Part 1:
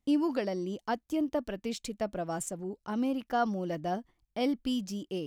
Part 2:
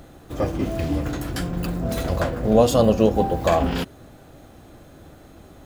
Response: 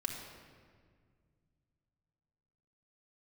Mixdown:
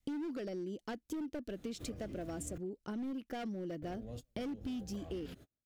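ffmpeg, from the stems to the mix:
-filter_complex "[0:a]adynamicequalizer=threshold=0.00708:dfrequency=330:dqfactor=0.95:tfrequency=330:tqfactor=0.95:attack=5:release=100:ratio=0.375:range=3:mode=boostabove:tftype=bell,volume=2.5dB,asplit=2[link_01][link_02];[1:a]acrossover=split=170[link_03][link_04];[link_04]acompressor=threshold=-26dB:ratio=4[link_05];[link_03][link_05]amix=inputs=2:normalize=0,alimiter=limit=-24dB:level=0:latency=1:release=168,adelay=1500,volume=-6dB,asplit=3[link_06][link_07][link_08];[link_06]atrim=end=2.58,asetpts=PTS-STARTPTS,afade=type=out:start_time=2.576:duration=0.004:curve=hsin[link_09];[link_07]atrim=start=2.58:end=3.82,asetpts=PTS-STARTPTS,volume=0[link_10];[link_08]atrim=start=3.82,asetpts=PTS-STARTPTS,afade=type=in:duration=0.004:curve=hsin[link_11];[link_09][link_10][link_11]concat=n=3:v=0:a=1[link_12];[link_02]apad=whole_len=315506[link_13];[link_12][link_13]sidechaingate=range=-45dB:threshold=-53dB:ratio=16:detection=peak[link_14];[link_01][link_14]amix=inputs=2:normalize=0,volume=22.5dB,asoftclip=hard,volume=-22.5dB,equalizer=frequency=910:width_type=o:width=0.93:gain=-9,acompressor=threshold=-39dB:ratio=6"

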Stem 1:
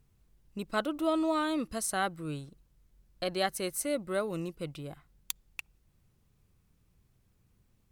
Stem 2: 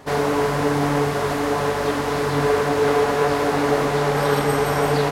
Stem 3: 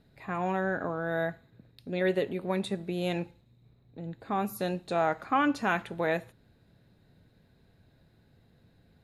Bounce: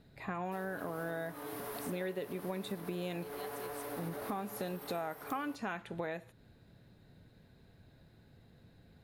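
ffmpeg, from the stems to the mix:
ffmpeg -i stem1.wav -i stem2.wav -i stem3.wav -filter_complex "[0:a]volume=-18dB[link_01];[1:a]aexciter=amount=4.4:drive=9.7:freq=10000,highpass=frequency=220:width=0.5412,highpass=frequency=220:width=1.3066,alimiter=limit=-15.5dB:level=0:latency=1:release=197,adelay=450,volume=-17dB[link_02];[2:a]volume=1.5dB[link_03];[link_01][link_02][link_03]amix=inputs=3:normalize=0,acompressor=threshold=-36dB:ratio=6" out.wav

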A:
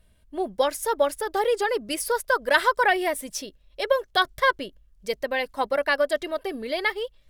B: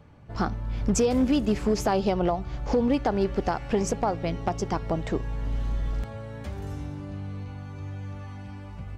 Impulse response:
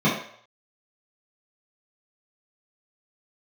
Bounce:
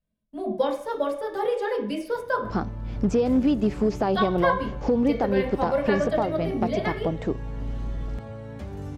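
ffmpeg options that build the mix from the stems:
-filter_complex "[0:a]agate=range=-18dB:threshold=-46dB:ratio=16:detection=peak,flanger=delay=4.5:depth=8.9:regen=-78:speed=0.45:shape=sinusoidal,volume=-3.5dB,asplit=3[link_01][link_02][link_03];[link_01]atrim=end=2.46,asetpts=PTS-STARTPTS,afade=type=out:start_time=2.456:duration=0.004:curve=hsin[link_04];[link_02]atrim=start=2.46:end=4.13,asetpts=PTS-STARTPTS,volume=0[link_05];[link_03]atrim=start=4.13,asetpts=PTS-STARTPTS,afade=type=in:duration=0.004:curve=hsin[link_06];[link_04][link_05][link_06]concat=n=3:v=0:a=1,asplit=2[link_07][link_08];[link_08]volume=-18.5dB[link_09];[1:a]adelay=2150,volume=-4dB[link_10];[2:a]atrim=start_sample=2205[link_11];[link_09][link_11]afir=irnorm=-1:irlink=0[link_12];[link_07][link_10][link_12]amix=inputs=3:normalize=0,acrossover=split=4500[link_13][link_14];[link_14]acompressor=threshold=-53dB:ratio=4:attack=1:release=60[link_15];[link_13][link_15]amix=inputs=2:normalize=0,equalizer=frequency=280:width_type=o:width=3:gain=6"

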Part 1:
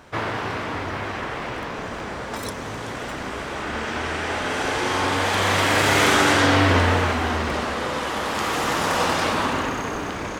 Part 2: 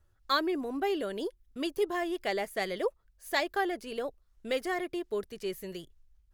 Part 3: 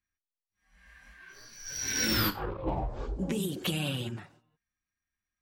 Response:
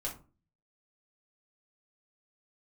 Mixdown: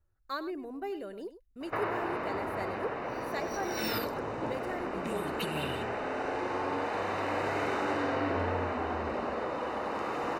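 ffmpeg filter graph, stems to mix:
-filter_complex "[0:a]bass=frequency=250:gain=-11,treble=frequency=4000:gain=-11,acompressor=threshold=-36dB:ratio=2,adynamicequalizer=threshold=0.00501:dfrequency=1700:dqfactor=0.72:tfrequency=1700:tqfactor=0.72:attack=5:release=100:ratio=0.375:range=3:mode=cutabove:tftype=bell,adelay=1600,volume=2.5dB,asplit=2[link_01][link_02];[link_02]volume=-6.5dB[link_03];[1:a]highshelf=frequency=8300:gain=8.5,volume=-6.5dB,asplit=3[link_04][link_05][link_06];[link_05]volume=-13dB[link_07];[2:a]highpass=frequency=120:width=0.5412,highpass=frequency=120:width=1.3066,equalizer=frequency=3400:width_type=o:width=1.8:gain=10,aexciter=amount=2.2:drive=7.8:freq=8100,adelay=1750,volume=-4.5dB[link_08];[link_06]apad=whole_len=315891[link_09];[link_08][link_09]sidechaincompress=threshold=-42dB:ratio=8:attack=16:release=189[link_10];[link_03][link_07]amix=inputs=2:normalize=0,aecho=0:1:100:1[link_11];[link_01][link_04][link_10][link_11]amix=inputs=4:normalize=0,asuperstop=centerf=3300:order=8:qfactor=7.6,highshelf=frequency=2700:gain=-11.5"

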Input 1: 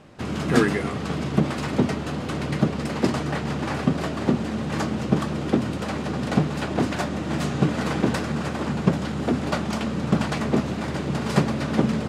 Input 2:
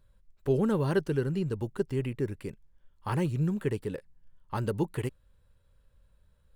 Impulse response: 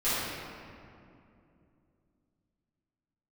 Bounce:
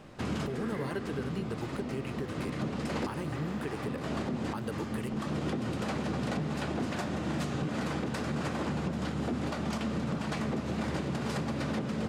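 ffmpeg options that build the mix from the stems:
-filter_complex "[0:a]acontrast=87,alimiter=limit=-9.5dB:level=0:latency=1:release=325,volume=-9.5dB,asplit=2[link_01][link_02];[link_02]volume=-22.5dB[link_03];[1:a]lowshelf=frequency=440:gain=-7.5,acompressor=threshold=-36dB:ratio=6,volume=2.5dB,asplit=2[link_04][link_05];[link_05]apad=whole_len=532840[link_06];[link_01][link_06]sidechaincompress=threshold=-51dB:ratio=8:attack=8.6:release=148[link_07];[2:a]atrim=start_sample=2205[link_08];[link_03][link_08]afir=irnorm=-1:irlink=0[link_09];[link_07][link_04][link_09]amix=inputs=3:normalize=0,alimiter=limit=-24dB:level=0:latency=1:release=174"

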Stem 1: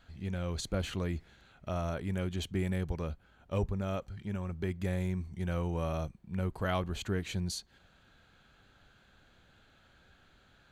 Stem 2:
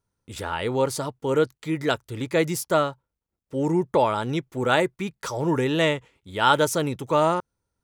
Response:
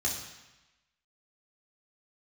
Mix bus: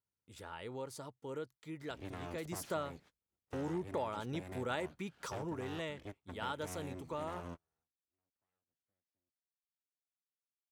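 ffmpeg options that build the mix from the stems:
-filter_complex "[0:a]acrossover=split=150|1800|4400[link_01][link_02][link_03][link_04];[link_01]acompressor=threshold=-46dB:ratio=4[link_05];[link_02]acompressor=threshold=-36dB:ratio=4[link_06];[link_03]acompressor=threshold=-58dB:ratio=4[link_07];[link_04]acompressor=threshold=-58dB:ratio=4[link_08];[link_05][link_06][link_07][link_08]amix=inputs=4:normalize=0,aeval=exprs='abs(val(0))':channel_layout=same,adelay=1800,volume=-0.5dB[link_09];[1:a]volume=-8.5dB,afade=type=in:start_time=2.41:duration=0.27:silence=0.334965,afade=type=out:start_time=5.08:duration=0.51:silence=0.446684,asplit=2[link_10][link_11];[link_11]apad=whole_len=551854[link_12];[link_09][link_12]sidechaingate=range=-51dB:threshold=-58dB:ratio=16:detection=peak[link_13];[link_13][link_10]amix=inputs=2:normalize=0,highpass=59,acompressor=threshold=-41dB:ratio=2"

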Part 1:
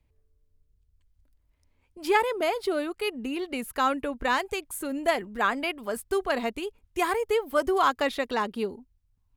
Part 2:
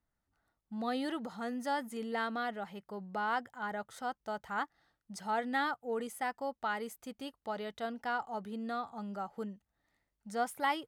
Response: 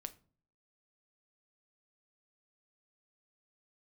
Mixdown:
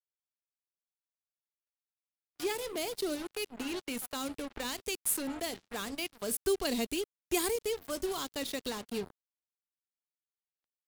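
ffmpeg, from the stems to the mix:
-filter_complex "[0:a]adynamicequalizer=threshold=0.00794:dfrequency=3300:dqfactor=0.7:tfrequency=3300:tqfactor=0.7:attack=5:release=100:ratio=0.375:range=4:mode=boostabove:tftype=highshelf,adelay=350,volume=-1dB,asplit=2[link_01][link_02];[link_02]volume=-8dB[link_03];[1:a]highpass=480,acompressor=threshold=-40dB:ratio=10,volume=-7.5dB,asplit=3[link_04][link_05][link_06];[link_04]atrim=end=5.92,asetpts=PTS-STARTPTS,afade=type=out:start_time=5.916:duration=0.004:curve=hsin[link_07];[link_05]atrim=start=5.92:end=7.55,asetpts=PTS-STARTPTS,volume=0[link_08];[link_06]atrim=start=7.55,asetpts=PTS-STARTPTS,afade=type=in:duration=0.004:curve=hsin[link_09];[link_07][link_08][link_09]concat=n=3:v=0:a=1,asplit=2[link_10][link_11];[link_11]apad=whole_len=428417[link_12];[link_01][link_12]sidechaincompress=threshold=-56dB:ratio=12:attack=8:release=717[link_13];[2:a]atrim=start_sample=2205[link_14];[link_03][link_14]afir=irnorm=-1:irlink=0[link_15];[link_13][link_10][link_15]amix=inputs=3:normalize=0,acrusher=bits=5:mix=0:aa=0.5,acrossover=split=440|3000[link_16][link_17][link_18];[link_17]acompressor=threshold=-43dB:ratio=5[link_19];[link_16][link_19][link_18]amix=inputs=3:normalize=0,agate=range=-30dB:threshold=-52dB:ratio=16:detection=peak"

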